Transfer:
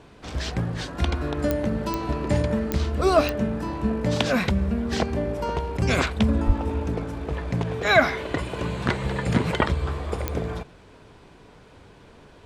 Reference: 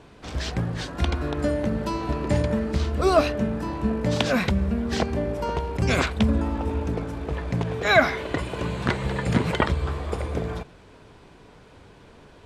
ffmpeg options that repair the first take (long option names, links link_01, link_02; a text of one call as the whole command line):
ffmpeg -i in.wav -filter_complex "[0:a]adeclick=threshold=4,asplit=3[link_01][link_02][link_03];[link_01]afade=type=out:start_time=6.46:duration=0.02[link_04];[link_02]highpass=frequency=140:width=0.5412,highpass=frequency=140:width=1.3066,afade=type=in:start_time=6.46:duration=0.02,afade=type=out:start_time=6.58:duration=0.02[link_05];[link_03]afade=type=in:start_time=6.58:duration=0.02[link_06];[link_04][link_05][link_06]amix=inputs=3:normalize=0" out.wav